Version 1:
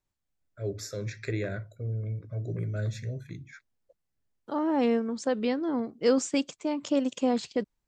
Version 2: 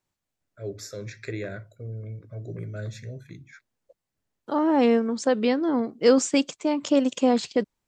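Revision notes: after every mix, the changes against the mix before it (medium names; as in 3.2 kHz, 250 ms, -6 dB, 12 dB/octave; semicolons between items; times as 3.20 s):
second voice +6.0 dB; master: add bass shelf 82 Hz -10 dB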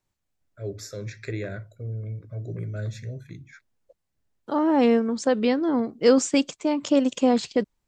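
master: add bass shelf 82 Hz +10 dB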